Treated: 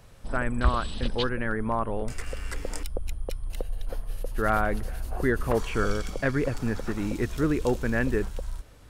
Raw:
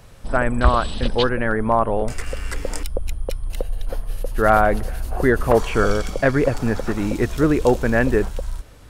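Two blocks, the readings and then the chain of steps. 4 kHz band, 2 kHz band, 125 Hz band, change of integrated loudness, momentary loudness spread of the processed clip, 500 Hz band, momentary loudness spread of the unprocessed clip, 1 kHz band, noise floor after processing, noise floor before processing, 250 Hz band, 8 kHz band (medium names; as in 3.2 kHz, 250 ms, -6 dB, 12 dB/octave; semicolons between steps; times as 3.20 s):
-6.5 dB, -7.5 dB, -6.5 dB, -8.5 dB, 11 LU, -10.0 dB, 13 LU, -10.0 dB, -48 dBFS, -42 dBFS, -7.0 dB, -6.5 dB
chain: dynamic bell 670 Hz, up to -6 dB, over -31 dBFS, Q 1.3; trim -6.5 dB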